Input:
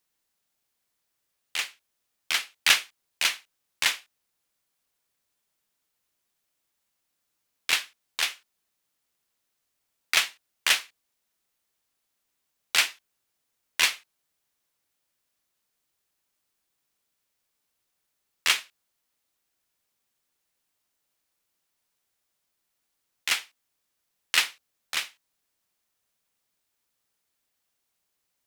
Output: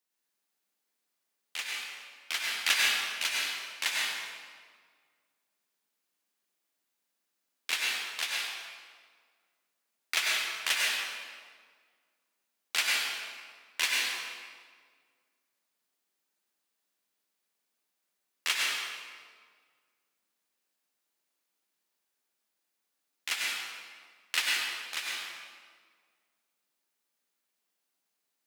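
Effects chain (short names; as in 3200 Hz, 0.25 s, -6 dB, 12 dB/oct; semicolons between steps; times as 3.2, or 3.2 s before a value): HPF 190 Hz 24 dB/oct; reverb RT60 1.8 s, pre-delay 90 ms, DRR -3.5 dB; gain -7.5 dB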